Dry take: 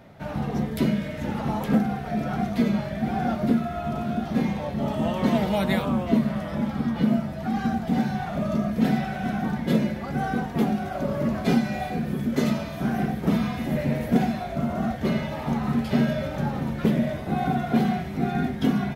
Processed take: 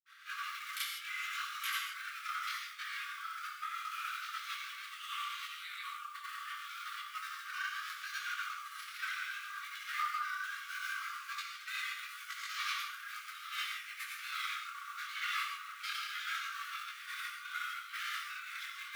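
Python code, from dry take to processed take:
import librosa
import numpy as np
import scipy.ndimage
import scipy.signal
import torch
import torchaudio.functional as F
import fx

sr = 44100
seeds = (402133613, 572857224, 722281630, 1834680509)

y = fx.notch(x, sr, hz=1800.0, q=12.0)
y = y + 0.33 * np.pad(y, (int(5.2 * sr / 1000.0), 0))[:len(y)]
y = fx.over_compress(y, sr, threshold_db=-29.0, ratio=-1.0)
y = fx.granulator(y, sr, seeds[0], grain_ms=100.0, per_s=20.0, spray_ms=34.0, spread_st=0)
y = fx.vibrato(y, sr, rate_hz=5.1, depth_cents=98.0)
y = fx.granulator(y, sr, seeds[1], grain_ms=100.0, per_s=20.0, spray_ms=100.0, spread_st=0)
y = fx.quant_float(y, sr, bits=4)
y = fx.tremolo_shape(y, sr, shape='saw_up', hz=1.1, depth_pct=50)
y = fx.brickwall_highpass(y, sr, low_hz=1100.0)
y = fx.rev_gated(y, sr, seeds[2], gate_ms=180, shape='flat', drr_db=1.5)
y = fx.detune_double(y, sr, cents=25)
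y = F.gain(torch.from_numpy(y), 7.0).numpy()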